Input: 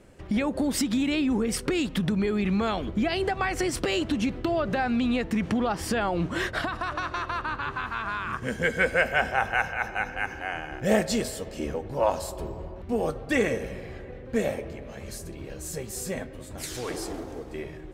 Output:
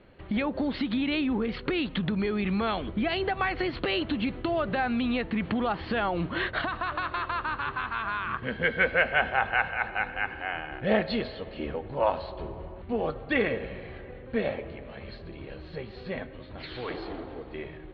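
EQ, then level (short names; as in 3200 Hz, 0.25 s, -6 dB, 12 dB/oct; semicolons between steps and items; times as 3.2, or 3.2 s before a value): rippled Chebyshev low-pass 4400 Hz, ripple 3 dB; bell 2200 Hz +3.5 dB 0.63 oct; 0.0 dB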